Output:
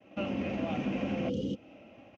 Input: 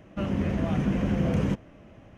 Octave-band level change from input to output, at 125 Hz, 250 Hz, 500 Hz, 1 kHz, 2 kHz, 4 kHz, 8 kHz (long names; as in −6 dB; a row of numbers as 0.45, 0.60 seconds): −12.5 dB, −6.0 dB, −3.0 dB, −3.0 dB, −2.5 dB, −0.5 dB, can't be measured